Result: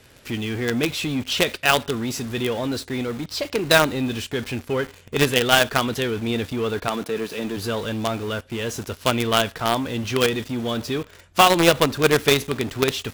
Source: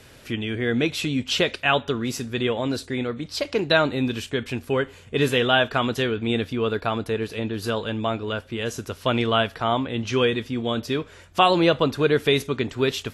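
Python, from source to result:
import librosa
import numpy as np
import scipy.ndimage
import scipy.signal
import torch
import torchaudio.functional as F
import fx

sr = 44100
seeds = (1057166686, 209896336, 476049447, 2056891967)

p1 = fx.highpass(x, sr, hz=150.0, slope=24, at=(6.87, 7.56), fade=0.02)
p2 = fx.quant_companded(p1, sr, bits=2)
p3 = p1 + (p2 * 10.0 ** (-6.0 / 20.0))
y = p3 * 10.0 ** (-3.0 / 20.0)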